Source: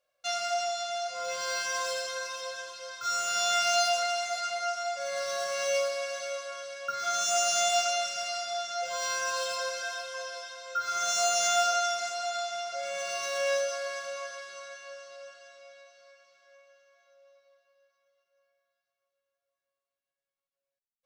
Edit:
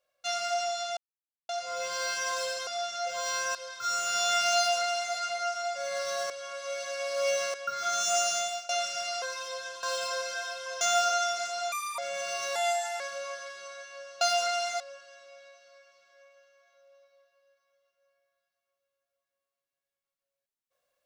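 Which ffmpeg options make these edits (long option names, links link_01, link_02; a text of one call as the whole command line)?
ffmpeg -i in.wav -filter_complex "[0:a]asplit=16[link_01][link_02][link_03][link_04][link_05][link_06][link_07][link_08][link_09][link_10][link_11][link_12][link_13][link_14][link_15][link_16];[link_01]atrim=end=0.97,asetpts=PTS-STARTPTS,afade=type=out:start_time=0.966:duration=0.004:curve=hsin,apad=pad_dur=0.52[link_17];[link_02]atrim=start=0.97:end=2.152,asetpts=PTS-STARTPTS,afade=type=in:duration=0.004:curve=hsin[link_18];[link_03]atrim=start=8.428:end=9.312[link_19];[link_04]atrim=start=2.758:end=5.512[link_20];[link_05]atrim=start=5.508:end=6.752,asetpts=PTS-STARTPTS,areverse[link_21];[link_06]atrim=start=6.748:end=7.9,asetpts=PTS-STARTPTS,afade=type=out:start_time=0.662:duration=0.49:silence=0.0794328[link_22];[link_07]atrim=start=7.9:end=8.432,asetpts=PTS-STARTPTS,afade=type=in:duration=0.004:curve=hsin:silence=0.0794328[link_23];[link_08]atrim=start=2.148:end=2.762[link_24];[link_09]atrim=start=9.308:end=10.292[link_25];[link_10]atrim=start=11.428:end=12.344[link_26];[link_11]atrim=start=12.34:end=12.79,asetpts=PTS-STARTPTS,asetrate=75411,aresample=44100,atrim=end_sample=11605,asetpts=PTS-STARTPTS[link_27];[link_12]atrim=start=12.786:end=13.364[link_28];[link_13]atrim=start=13.36:end=13.92,asetpts=PTS-STARTPTS,asetrate=55125,aresample=44100[link_29];[link_14]atrim=start=13.916:end=15.132[link_30];[link_15]atrim=start=3.768:end=4.362[link_31];[link_16]atrim=start=15.128[link_32];[link_17][link_18]concat=n=2:v=0:a=1[link_33];[link_33][link_19]acrossfade=duration=0.004:curve1=hsin:curve2=hsin[link_34];[link_34][link_20]acrossfade=duration=0.004:curve1=hsin:curve2=hsin[link_35];[link_35][link_21]acrossfade=duration=0.004:curve1=hsin:curve2=hsin[link_36];[link_22][link_23]concat=n=2:v=0:a=1[link_37];[link_36][link_37]acrossfade=duration=0.004:curve1=hsin:curve2=hsin[link_38];[link_38][link_24]acrossfade=duration=0.004:curve1=hsin:curve2=hsin[link_39];[link_39][link_25]acrossfade=duration=0.004:curve1=hsin:curve2=hsin[link_40];[link_40][link_26]acrossfade=duration=0.004:curve1=hsin:curve2=hsin[link_41];[link_41][link_27]acrossfade=duration=0.004:curve1=hsin:curve2=hsin[link_42];[link_42][link_28]acrossfade=duration=0.004:curve1=hsin:curve2=hsin[link_43];[link_43][link_29]acrossfade=duration=0.004:curve1=hsin:curve2=hsin[link_44];[link_44][link_30]acrossfade=duration=0.004:curve1=hsin:curve2=hsin[link_45];[link_45][link_31]acrossfade=duration=0.004:curve1=hsin:curve2=hsin[link_46];[link_46][link_32]acrossfade=duration=0.004:curve1=hsin:curve2=hsin" out.wav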